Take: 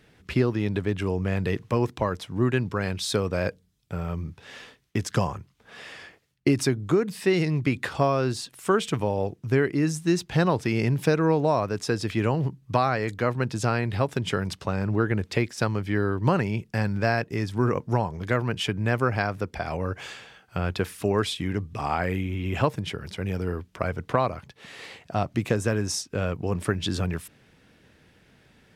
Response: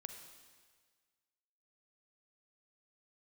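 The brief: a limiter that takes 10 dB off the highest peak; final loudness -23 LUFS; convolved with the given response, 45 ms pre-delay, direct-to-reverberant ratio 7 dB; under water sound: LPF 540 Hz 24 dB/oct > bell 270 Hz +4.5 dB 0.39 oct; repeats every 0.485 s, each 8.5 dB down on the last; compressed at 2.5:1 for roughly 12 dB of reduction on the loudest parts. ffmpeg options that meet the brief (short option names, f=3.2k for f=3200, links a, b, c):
-filter_complex "[0:a]acompressor=threshold=-36dB:ratio=2.5,alimiter=level_in=2.5dB:limit=-24dB:level=0:latency=1,volume=-2.5dB,aecho=1:1:485|970|1455|1940:0.376|0.143|0.0543|0.0206,asplit=2[a][b];[1:a]atrim=start_sample=2205,adelay=45[c];[b][c]afir=irnorm=-1:irlink=0,volume=-3dB[d];[a][d]amix=inputs=2:normalize=0,lowpass=f=540:w=0.5412,lowpass=f=540:w=1.3066,equalizer=f=270:t=o:w=0.39:g=4.5,volume=15dB"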